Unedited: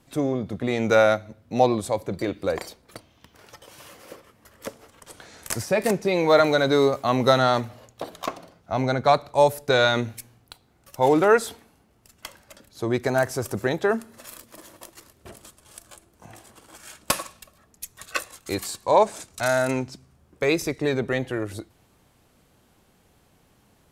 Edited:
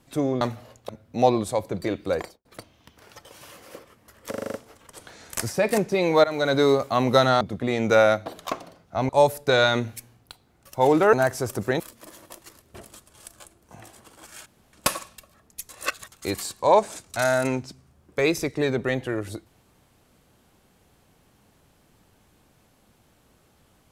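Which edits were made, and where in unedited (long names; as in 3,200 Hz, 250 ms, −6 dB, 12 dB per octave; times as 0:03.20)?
0:00.41–0:01.26: swap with 0:07.54–0:08.02
0:02.53–0:02.82: fade out and dull
0:04.67: stutter 0.04 s, 7 plays
0:06.37–0:06.67: fade in, from −17 dB
0:08.85–0:09.30: remove
0:11.34–0:13.09: remove
0:13.76–0:14.31: remove
0:16.97: splice in room tone 0.27 s
0:17.93–0:18.36: reverse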